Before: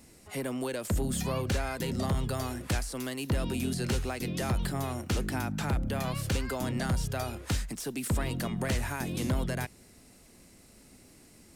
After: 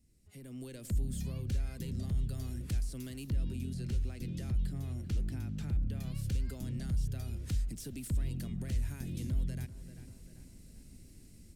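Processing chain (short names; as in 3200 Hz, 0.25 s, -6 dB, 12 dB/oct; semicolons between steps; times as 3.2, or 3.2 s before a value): tape echo 0.39 s, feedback 60%, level -16 dB, low-pass 2400 Hz; compressor 3:1, threshold -38 dBFS, peak gain reduction 10 dB; passive tone stack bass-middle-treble 10-0-1; AGC gain up to 16 dB; 3.32–6 high shelf 5900 Hz -6 dB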